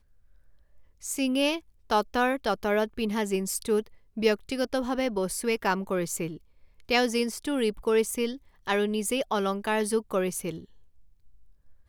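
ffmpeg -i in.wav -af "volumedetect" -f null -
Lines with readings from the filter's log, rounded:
mean_volume: -28.9 dB
max_volume: -10.6 dB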